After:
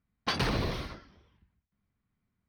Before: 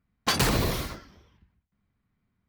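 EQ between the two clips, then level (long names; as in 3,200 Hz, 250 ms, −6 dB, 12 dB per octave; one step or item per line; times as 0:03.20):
Savitzky-Golay smoothing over 15 samples
−5.0 dB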